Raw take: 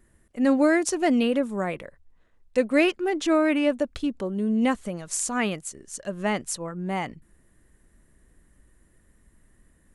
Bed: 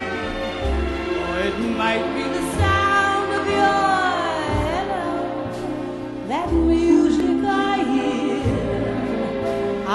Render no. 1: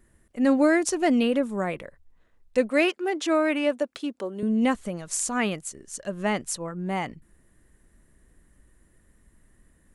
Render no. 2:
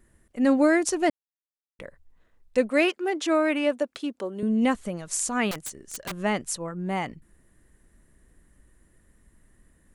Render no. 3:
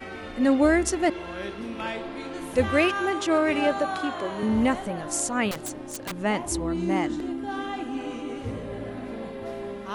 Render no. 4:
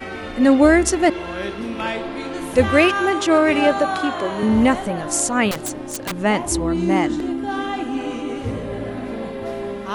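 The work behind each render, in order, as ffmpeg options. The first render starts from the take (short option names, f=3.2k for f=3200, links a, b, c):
-filter_complex "[0:a]asettb=1/sr,asplit=3[a][b][c];[a]atrim=end=2.704[d];[b]atrim=start=2.7:end=4.43,asetpts=PTS-STARTPTS,afade=t=in:d=0.004:c=qsin,afade=t=out:st=1.726:d=0.004:c=qsin,highpass=320[e];[c]atrim=start=4.426[f];[d][e]acrossfade=d=0.004:c1=hsin:c2=qsin[g];[g][f]acrossfade=d=0.004:c1=qsin:c2=hsin"
-filter_complex "[0:a]asettb=1/sr,asplit=3[a][b][c];[a]atrim=end=5.514[d];[b]atrim=start=5.51:end=6.13,asetpts=PTS-STARTPTS,afade=t=in:d=0.004:c=qsin,afade=t=out:st=0.616:d=0.004:c=qsin,aeval=exprs='(mod(21.1*val(0)+1,2)-1)/21.1':c=same[e];[c]atrim=start=6.126[f];[d][e]acrossfade=d=0.004:c1=hsin:c2=qsin[g];[g][f]acrossfade=d=0.004:c1=qsin:c2=hsin,asplit=3[h][i][j];[h]atrim=end=1.1,asetpts=PTS-STARTPTS,afade=t=out:st=1.096:d=0.004:c=hsin[k];[i]atrim=start=1.1:end=1.79,asetpts=PTS-STARTPTS,volume=0[l];[j]atrim=start=1.79,asetpts=PTS-STARTPTS,afade=t=in:d=0.004:c=hsin[m];[k][l][m]concat=n=3:v=0:a=1"
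-filter_complex "[1:a]volume=-12dB[a];[0:a][a]amix=inputs=2:normalize=0"
-af "volume=7dB"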